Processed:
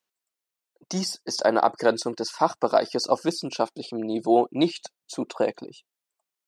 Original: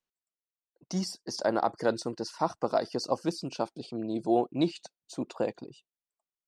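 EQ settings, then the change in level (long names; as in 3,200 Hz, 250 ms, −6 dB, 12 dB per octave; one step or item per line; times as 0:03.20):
high-pass filter 310 Hz 6 dB per octave
+8.0 dB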